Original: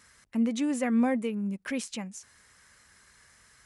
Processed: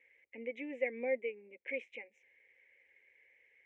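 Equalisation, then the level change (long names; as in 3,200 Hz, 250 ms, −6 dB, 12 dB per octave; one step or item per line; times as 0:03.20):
pair of resonant band-passes 1,100 Hz, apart 2 octaves
high-frequency loss of the air 160 metres
phaser with its sweep stopped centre 930 Hz, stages 8
+6.0 dB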